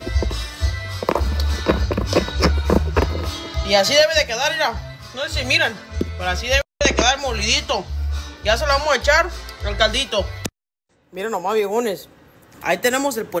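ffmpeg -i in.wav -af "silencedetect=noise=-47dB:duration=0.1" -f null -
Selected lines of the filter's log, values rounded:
silence_start: 6.62
silence_end: 6.81 | silence_duration: 0.19
silence_start: 10.49
silence_end: 11.08 | silence_duration: 0.59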